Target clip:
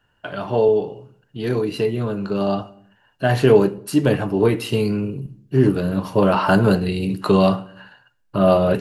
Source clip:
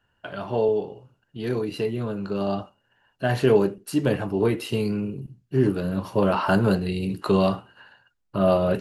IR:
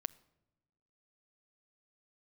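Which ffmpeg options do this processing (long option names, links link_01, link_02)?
-filter_complex "[1:a]atrim=start_sample=2205,afade=type=out:start_time=0.41:duration=0.01,atrim=end_sample=18522[link_01];[0:a][link_01]afir=irnorm=-1:irlink=0,volume=6.5dB"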